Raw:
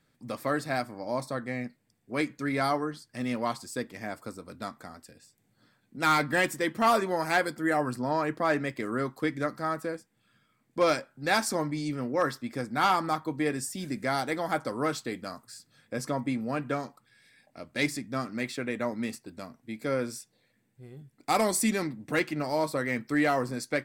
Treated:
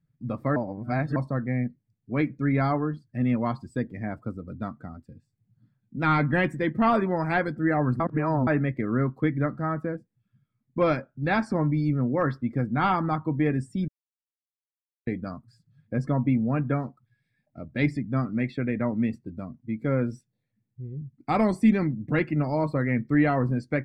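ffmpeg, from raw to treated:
-filter_complex "[0:a]asplit=7[a][b][c][d][e][f][g];[a]atrim=end=0.562[h];[b]atrim=start=0.558:end=1.162,asetpts=PTS-STARTPTS,areverse[i];[c]atrim=start=1.158:end=8.002[j];[d]atrim=start=7.998:end=8.472,asetpts=PTS-STARTPTS,areverse[k];[e]atrim=start=8.468:end=13.88,asetpts=PTS-STARTPTS,afade=t=out:st=5.408:d=0.004:c=hsin[l];[f]atrim=start=13.88:end=15.07,asetpts=PTS-STARTPTS,volume=0[m];[g]atrim=start=15.07,asetpts=PTS-STARTPTS,afade=t=in:d=0.004:c=hsin[n];[h][i]acrossfade=d=0.004:c1=hsin:c2=hsin[o];[o][j]acrossfade=d=0.004:c1=hsin:c2=hsin[p];[p][k]acrossfade=d=0.004:c1=hsin:c2=hsin[q];[l][m][n]concat=n=3:v=0:a=1[r];[q][r]acrossfade=d=0.004:c1=hsin:c2=hsin,bass=f=250:g=14,treble=f=4k:g=-9,afftdn=nr=18:nf=-44,acrossover=split=3800[s][t];[t]acompressor=threshold=-52dB:ratio=4:attack=1:release=60[u];[s][u]amix=inputs=2:normalize=0"

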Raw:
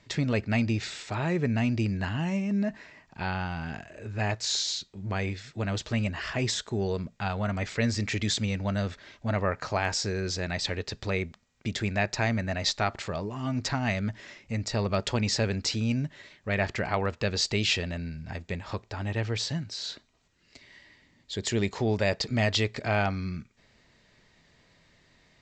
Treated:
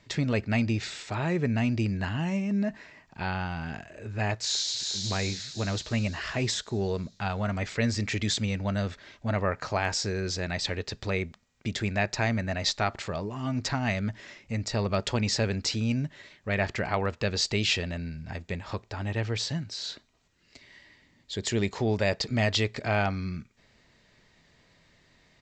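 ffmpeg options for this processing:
-filter_complex "[0:a]asplit=2[a][b];[b]afade=t=in:st=4.38:d=0.01,afade=t=out:st=5.03:d=0.01,aecho=0:1:360|720|1080|1440|1800|2160|2520|2880:0.668344|0.367589|0.202174|0.111196|0.0611576|0.0336367|0.0185002|0.0101751[c];[a][c]amix=inputs=2:normalize=0"

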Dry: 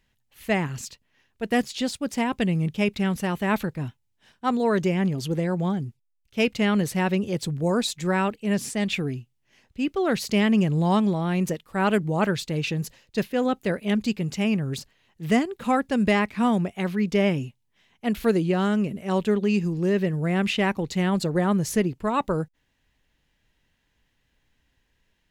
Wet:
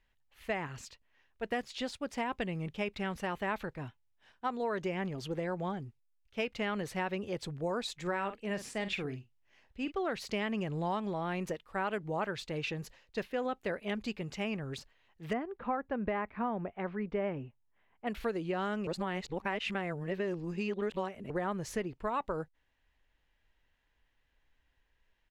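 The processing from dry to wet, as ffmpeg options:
-filter_complex "[0:a]asplit=3[a][b][c];[a]afade=t=out:st=8.05:d=0.02[d];[b]asplit=2[e][f];[f]adelay=46,volume=-11.5dB[g];[e][g]amix=inputs=2:normalize=0,afade=t=in:st=8.05:d=0.02,afade=t=out:st=9.9:d=0.02[h];[c]afade=t=in:st=9.9:d=0.02[i];[d][h][i]amix=inputs=3:normalize=0,asettb=1/sr,asplit=3[j][k][l];[j]atrim=end=15.334[m];[k]atrim=start=15.33:end=18.07,asetpts=PTS-STARTPTS,afade=t=in:d=0.004:c=qsin,afade=t=out:st=2.736:d=0.004:c=qsin,lowpass=1.6k[n];[l]atrim=start=18.066[o];[m][n]acrossfade=d=0.004:c1=hsin:c2=qsin[p];[p][o]acrossfade=d=0.004:c1=qsin:c2=hsin,asplit=3[q][r][s];[q]atrim=end=18.872[t];[r]atrim=start=18.868:end=21.302,asetpts=PTS-STARTPTS,areverse[u];[s]atrim=start=21.298[v];[t][u]acrossfade=d=0.004:c1=hsin:c2=hsin[w];[w][v]acrossfade=d=0.004:c1=hsin:c2=hsin,lowpass=f=1.5k:p=1,equalizer=f=170:w=0.48:g=-13.5,acompressor=threshold=-30dB:ratio=6"

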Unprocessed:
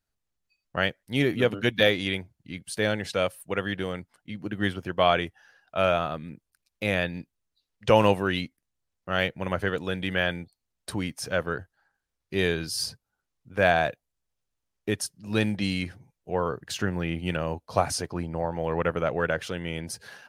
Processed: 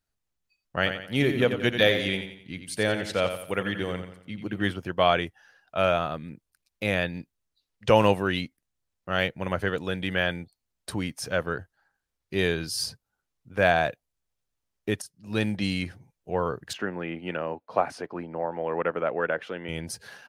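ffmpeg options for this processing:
-filter_complex "[0:a]asplit=3[a][b][c];[a]afade=t=out:st=0.79:d=0.02[d];[b]aecho=1:1:88|176|264|352|440:0.376|0.154|0.0632|0.0259|0.0106,afade=t=in:st=0.79:d=0.02,afade=t=out:st=4.7:d=0.02[e];[c]afade=t=in:st=4.7:d=0.02[f];[d][e][f]amix=inputs=3:normalize=0,asettb=1/sr,asplit=3[g][h][i];[g]atrim=end=16.734[j];[h]atrim=start=16.73:end=19.69,asetpts=PTS-STARTPTS,afade=t=in:d=0.004:c=qsin,afade=t=out:st=2.956:d=0.004:c=qsin,acrossover=split=200 2900:gain=0.0891 1 0.112[k][l][m];[k][l][m]amix=inputs=3:normalize=0[n];[i]atrim=start=19.686[o];[j][n]acrossfade=d=0.004:c1=hsin:c2=qsin[p];[p][o]acrossfade=d=0.004:c1=qsin:c2=hsin,asplit=2[q][r];[q]atrim=end=15.02,asetpts=PTS-STARTPTS,afade=t=out:st=15.016:d=0.004:c=hsin:silence=0.211349[s];[r]atrim=start=15.02,asetpts=PTS-STARTPTS,afade=t=in:d=0.67:c=qsin:silence=0.211349[t];[s][t]concat=n=2:v=0:a=1"

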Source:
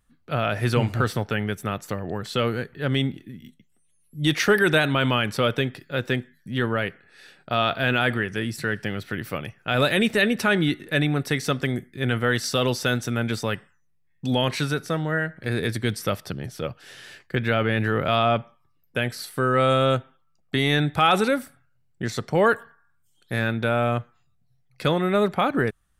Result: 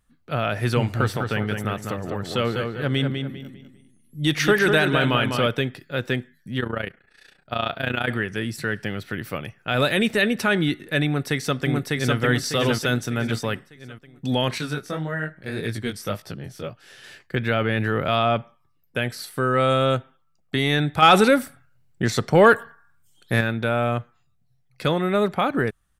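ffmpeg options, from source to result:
-filter_complex "[0:a]asettb=1/sr,asplit=3[a][b][c];[a]atrim=end=0.804[d];[b]atrim=start=0.8:end=5.47,asetpts=PTS-STARTPTS,afade=t=in:d=0.004:c=qsin,afade=t=out:st=4.666:d=0.004:c=qsin,asplit=2[e][f];[f]adelay=200,lowpass=f=3.9k:p=1,volume=-5dB,asplit=2[g][h];[h]adelay=200,lowpass=f=3.9k:p=1,volume=0.34,asplit=2[i][j];[j]adelay=200,lowpass=f=3.9k:p=1,volume=0.34,asplit=2[k][l];[l]adelay=200,lowpass=f=3.9k:p=1,volume=0.34[m];[e][g][i][k][m]amix=inputs=5:normalize=0,atrim=end_sample=205947[n];[c]atrim=start=5.466[o];[d][n]acrossfade=d=0.004:c1=hsin:c2=qsin[p];[p][o]acrossfade=d=0.004:c1=qsin:c2=hsin,asettb=1/sr,asplit=3[q][r][s];[q]atrim=end=6.604[t];[r]atrim=start=6.6:end=8.09,asetpts=PTS-STARTPTS,afade=t=in:d=0.004:c=qsin,afade=t=out:st=1.486:d=0.004:c=qsin,tremolo=f=29:d=0.824[u];[s]atrim=start=8.086[v];[t][u]acrossfade=d=0.004:c1=hsin:c2=qsin[w];[w][v]acrossfade=d=0.004:c1=qsin:c2=hsin,asplit=2[x][y];[y]afade=t=in:st=11.06:d=0.01,afade=t=out:st=12.18:d=0.01,aecho=0:1:600|1200|1800|2400|3000:0.891251|0.3565|0.1426|0.0570401|0.022816[z];[x][z]amix=inputs=2:normalize=0,asettb=1/sr,asplit=3[aa][ab][ac];[aa]atrim=end=14.584[ad];[ab]atrim=start=14.58:end=17.04,asetpts=PTS-STARTPTS,afade=t=in:d=0.004:c=qsin,afade=t=out:st=2.456:d=0.004:c=qsin,flanger=delay=17.5:depth=4.9:speed=1.8[ae];[ac]atrim=start=17.036[af];[ad][ae]acrossfade=d=0.004:c1=hsin:c2=qsin[ag];[ag][af]acrossfade=d=0.004:c1=qsin:c2=hsin,asettb=1/sr,asplit=3[ah][ai][aj];[ah]atrim=end=21.024[ak];[ai]atrim=start=21.02:end=23.41,asetpts=PTS-STARTPTS,afade=t=in:d=0.004:c=qsin,afade=t=out:st=2.386:d=0.004:c=qsin,acontrast=50[al];[aj]atrim=start=23.406[am];[ak][al]acrossfade=d=0.004:c1=hsin:c2=qsin[an];[an][am]acrossfade=d=0.004:c1=qsin:c2=hsin"

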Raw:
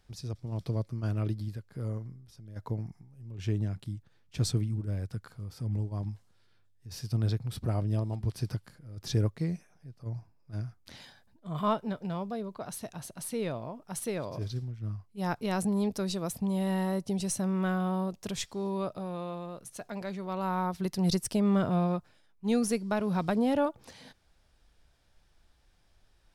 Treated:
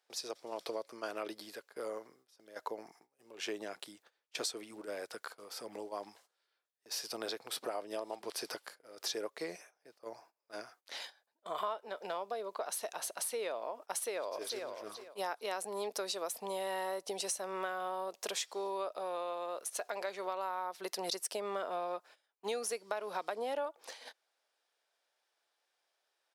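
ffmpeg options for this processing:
-filter_complex "[0:a]asplit=2[a][b];[b]afade=t=in:st=13.99:d=0.01,afade=t=out:st=14.63:d=0.01,aecho=0:1:450|900|1350:0.251189|0.0627972|0.0156993[c];[a][c]amix=inputs=2:normalize=0,agate=range=-16dB:threshold=-50dB:ratio=16:detection=peak,highpass=f=450:w=0.5412,highpass=f=450:w=1.3066,acompressor=threshold=-43dB:ratio=6,volume=8dB"

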